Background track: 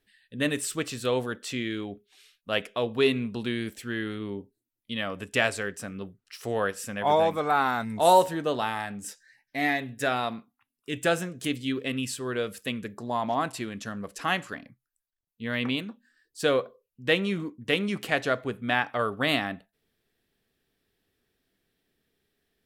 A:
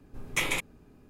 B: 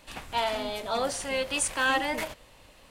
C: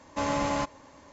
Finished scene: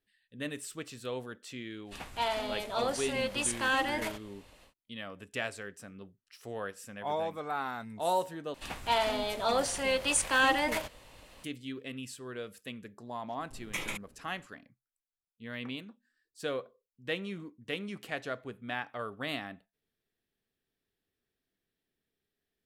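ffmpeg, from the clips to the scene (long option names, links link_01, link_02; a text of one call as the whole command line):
ffmpeg -i bed.wav -i cue0.wav -i cue1.wav -filter_complex "[2:a]asplit=2[link_01][link_02];[0:a]volume=-11dB[link_03];[link_01]aresample=32000,aresample=44100[link_04];[link_03]asplit=2[link_05][link_06];[link_05]atrim=end=8.544[link_07];[link_02]atrim=end=2.9[link_08];[link_06]atrim=start=11.436[link_09];[link_04]atrim=end=2.9,asetpts=PTS-STARTPTS,volume=-3.5dB,afade=type=in:duration=0.1,afade=type=out:start_time=2.8:duration=0.1,adelay=1840[link_10];[1:a]atrim=end=1.09,asetpts=PTS-STARTPTS,volume=-8dB,afade=type=in:duration=0.004:curve=hsin,afade=type=out:start_time=1.086:duration=0.004:curve=hsin,adelay=13370[link_11];[link_07][link_08]acrossfade=duration=0.004:curve1=hsin:curve2=hsin[link_12];[link_12][link_09]acrossfade=duration=0.004:curve1=hsin:curve2=hsin[link_13];[link_13][link_10][link_11]amix=inputs=3:normalize=0" out.wav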